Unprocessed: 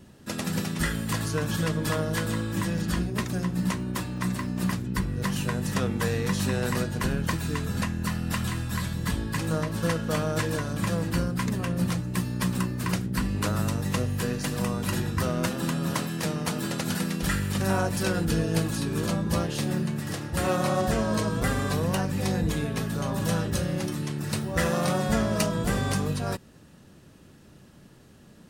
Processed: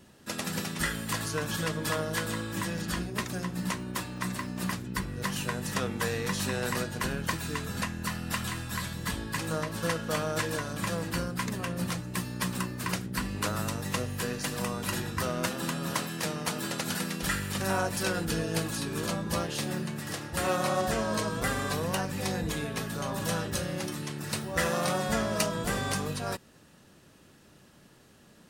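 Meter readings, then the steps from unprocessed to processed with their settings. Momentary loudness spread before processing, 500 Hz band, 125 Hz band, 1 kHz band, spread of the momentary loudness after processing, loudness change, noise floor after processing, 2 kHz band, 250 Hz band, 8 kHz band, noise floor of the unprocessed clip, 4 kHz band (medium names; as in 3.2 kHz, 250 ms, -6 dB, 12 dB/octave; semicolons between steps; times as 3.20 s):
4 LU, -3.0 dB, -7.5 dB, -1.0 dB, 5 LU, -4.0 dB, -57 dBFS, -0.5 dB, -6.0 dB, 0.0 dB, -52 dBFS, 0.0 dB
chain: bass shelf 350 Hz -8.5 dB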